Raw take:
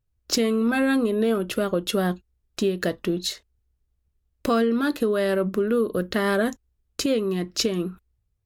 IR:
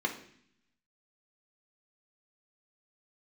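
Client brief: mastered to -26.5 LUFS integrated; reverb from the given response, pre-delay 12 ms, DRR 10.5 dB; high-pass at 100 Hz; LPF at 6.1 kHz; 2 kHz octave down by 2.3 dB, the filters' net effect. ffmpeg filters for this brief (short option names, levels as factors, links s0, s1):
-filter_complex "[0:a]highpass=100,lowpass=6100,equalizer=f=2000:t=o:g=-3,asplit=2[s0][s1];[1:a]atrim=start_sample=2205,adelay=12[s2];[s1][s2]afir=irnorm=-1:irlink=0,volume=0.141[s3];[s0][s3]amix=inputs=2:normalize=0,volume=0.75"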